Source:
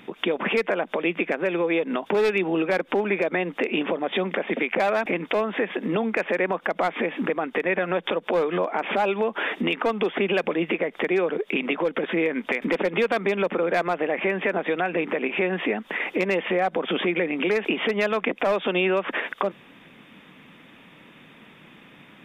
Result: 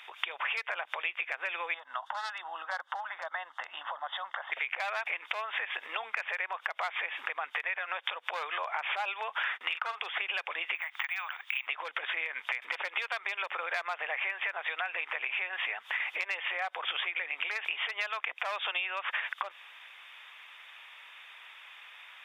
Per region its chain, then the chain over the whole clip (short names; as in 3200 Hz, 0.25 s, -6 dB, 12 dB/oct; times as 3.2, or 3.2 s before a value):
1.74–4.52 air absorption 62 m + fixed phaser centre 1000 Hz, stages 4
9.43–10 bell 1400 Hz +6.5 dB 0.66 oct + doubler 44 ms -9.5 dB + gate -32 dBFS, range -27 dB
10.75–11.67 steep high-pass 790 Hz + careless resampling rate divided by 2×, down filtered, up hold
whole clip: HPF 830 Hz 24 dB/oct; bell 3600 Hz +5 dB 2.6 oct; compressor 6:1, threshold -28 dBFS; gain -2 dB